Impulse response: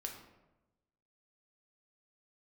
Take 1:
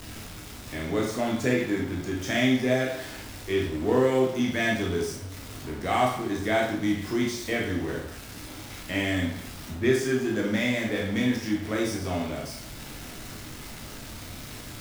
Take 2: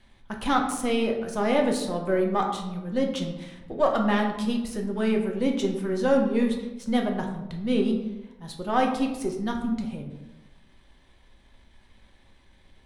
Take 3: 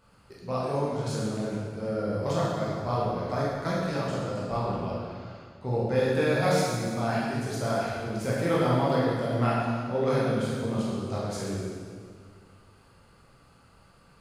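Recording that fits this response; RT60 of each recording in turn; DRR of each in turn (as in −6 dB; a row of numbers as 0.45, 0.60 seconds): 2; 0.70, 1.0, 1.8 seconds; −2.5, 1.5, −7.0 decibels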